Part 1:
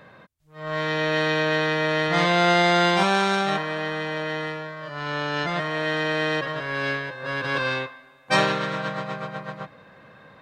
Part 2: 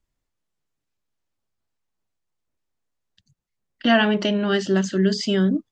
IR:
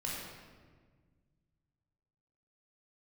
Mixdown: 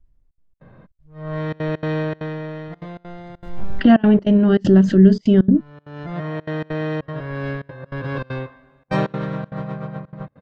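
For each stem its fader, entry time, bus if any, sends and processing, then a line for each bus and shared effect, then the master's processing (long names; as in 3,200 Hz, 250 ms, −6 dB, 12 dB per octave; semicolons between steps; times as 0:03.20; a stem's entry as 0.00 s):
−4.0 dB, 0.60 s, no send, automatic ducking −19 dB, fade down 1.20 s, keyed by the second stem
−1.0 dB, 0.00 s, no send, background raised ahead of every attack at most 80 dB per second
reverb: not used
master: spectral tilt −4.5 dB per octave; gate pattern "xxxx.xx.xxxx.xxx" 197 BPM −24 dB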